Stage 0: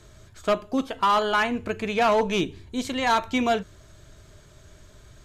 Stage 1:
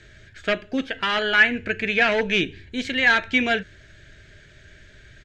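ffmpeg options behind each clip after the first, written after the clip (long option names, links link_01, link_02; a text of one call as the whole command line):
ffmpeg -i in.wav -af "firequalizer=gain_entry='entry(510,0);entry(1100,-12);entry(1600,13);entry(3800,3);entry(12000,-18)':delay=0.05:min_phase=1" out.wav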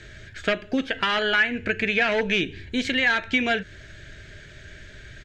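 ffmpeg -i in.wav -af "acompressor=threshold=-27dB:ratio=2.5,volume=5dB" out.wav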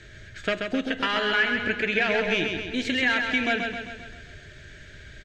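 ffmpeg -i in.wav -af "aecho=1:1:132|264|396|528|660|792|924:0.562|0.315|0.176|0.0988|0.0553|0.031|0.0173,volume=-3dB" out.wav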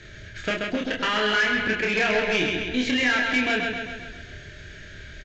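ffmpeg -i in.wav -filter_complex "[0:a]asoftclip=type=tanh:threshold=-19.5dB,asplit=2[link_01][link_02];[link_02]adelay=28,volume=-3dB[link_03];[link_01][link_03]amix=inputs=2:normalize=0,aresample=16000,aresample=44100,volume=2dB" out.wav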